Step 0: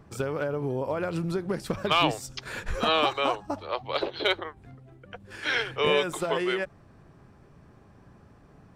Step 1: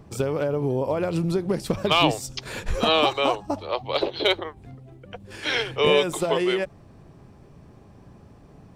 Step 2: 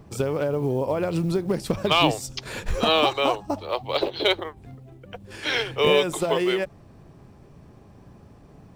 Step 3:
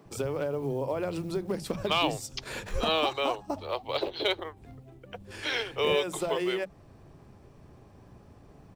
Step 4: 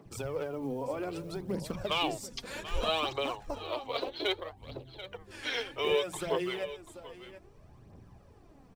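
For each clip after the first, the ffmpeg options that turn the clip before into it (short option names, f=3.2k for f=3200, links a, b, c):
-af "equalizer=f=1.5k:w=1.6:g=-7.5,volume=5.5dB"
-af "acrusher=bits=9:mode=log:mix=0:aa=0.000001"
-filter_complex "[0:a]asplit=2[a][b];[b]acompressor=threshold=-29dB:ratio=6,volume=-1dB[c];[a][c]amix=inputs=2:normalize=0,acrossover=split=180[d][e];[d]adelay=50[f];[f][e]amix=inputs=2:normalize=0,volume=-8.5dB"
-af "aecho=1:1:737:0.211,aphaser=in_gain=1:out_gain=1:delay=4.4:decay=0.52:speed=0.63:type=triangular,volume=-5dB"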